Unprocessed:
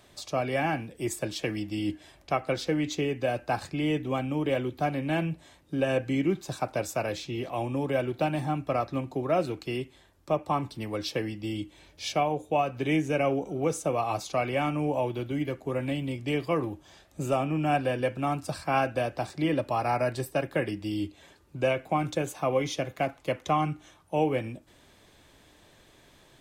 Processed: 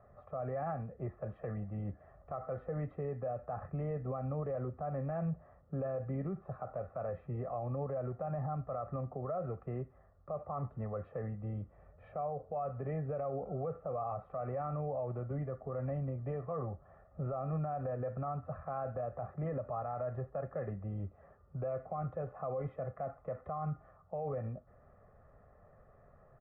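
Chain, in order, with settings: steep low-pass 1.5 kHz 36 dB/octave; comb 1.6 ms, depth 89%; peak limiter -25.5 dBFS, peak gain reduction 15 dB; trim -4.5 dB

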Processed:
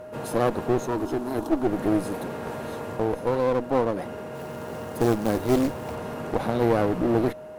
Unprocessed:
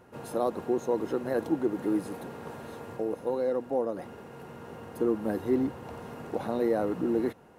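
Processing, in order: 0.87–1.67 s: static phaser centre 530 Hz, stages 6; whistle 620 Hz -47 dBFS; 4.35–5.95 s: short-mantissa float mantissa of 2-bit; one-sided clip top -38 dBFS; trim +8.5 dB

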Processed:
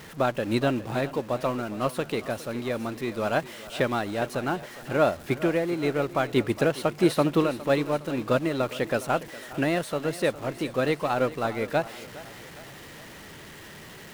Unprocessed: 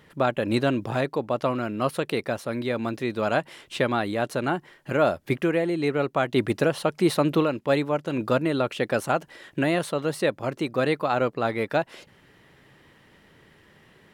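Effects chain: jump at every zero crossing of -32 dBFS; thinning echo 411 ms, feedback 52%, high-pass 170 Hz, level -12 dB; upward expansion 1.5:1, over -31 dBFS

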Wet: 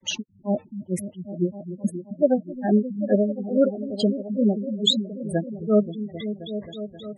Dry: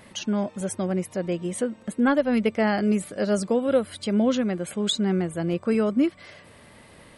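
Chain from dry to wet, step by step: granulator 240 ms, grains 2.3 per s, spray 105 ms, pitch spread up and down by 0 st; delay with an opening low-pass 265 ms, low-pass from 200 Hz, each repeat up 1 oct, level -6 dB; spectral gate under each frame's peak -15 dB strong; trim +8 dB

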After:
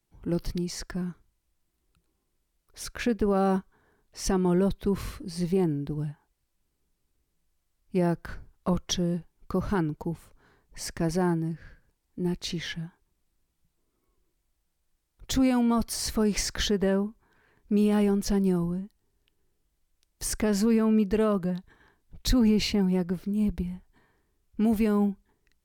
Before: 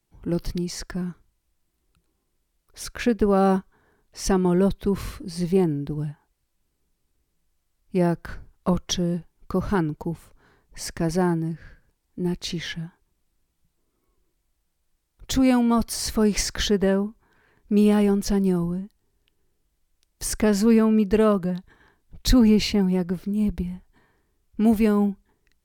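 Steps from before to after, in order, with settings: peak limiter -12.5 dBFS, peak gain reduction 4 dB; trim -3 dB

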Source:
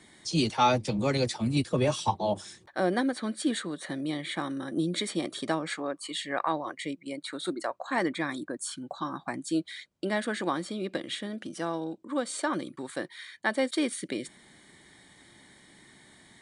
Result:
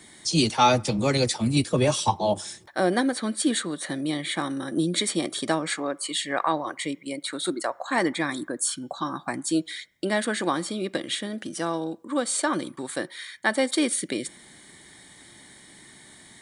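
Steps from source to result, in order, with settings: treble shelf 6.5 kHz +10 dB; on a send: reverberation RT60 0.60 s, pre-delay 3 ms, DRR 19.5 dB; on the sum: trim +4 dB

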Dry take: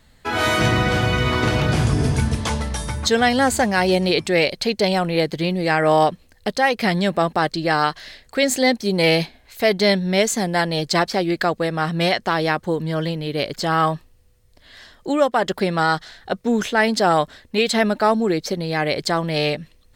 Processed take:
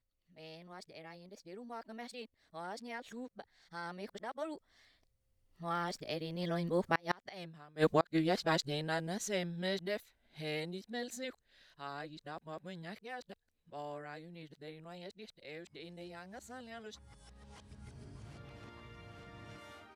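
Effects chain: reverse the whole clip; Doppler pass-by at 7.45 s, 22 m/s, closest 1.8 m; inverted gate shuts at -23 dBFS, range -35 dB; trim +8.5 dB

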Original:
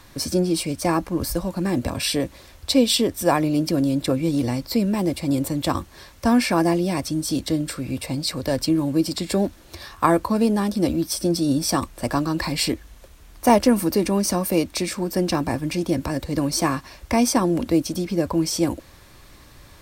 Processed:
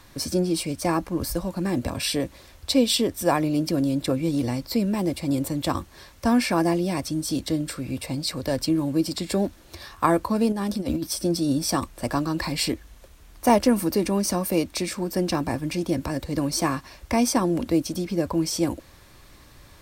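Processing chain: 10.52–11.07 s: compressor with a negative ratio -23 dBFS, ratio -0.5; trim -2.5 dB

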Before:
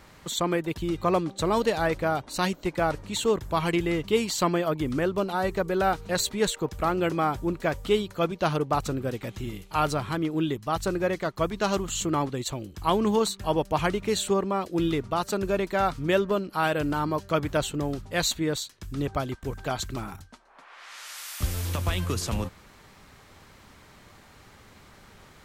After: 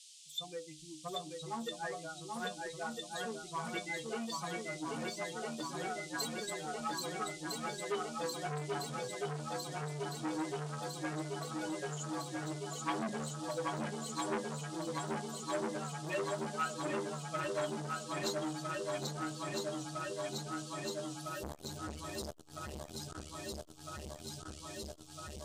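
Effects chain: expander on every frequency bin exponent 3; inharmonic resonator 73 Hz, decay 0.39 s, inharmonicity 0.008; band noise 3–9.2 kHz -60 dBFS; shuffle delay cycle 1306 ms, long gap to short 1.5:1, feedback 78%, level -3.5 dB; transformer saturation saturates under 1.4 kHz; trim +3 dB

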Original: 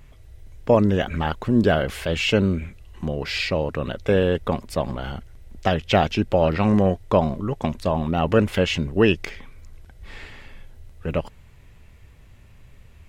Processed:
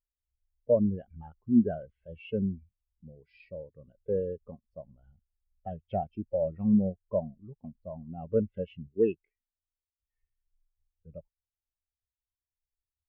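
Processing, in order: 8.88–10.17 s: bass shelf 72 Hz -9 dB; hard clipper -8 dBFS, distortion -27 dB; spectral contrast expander 2.5:1; trim -4.5 dB

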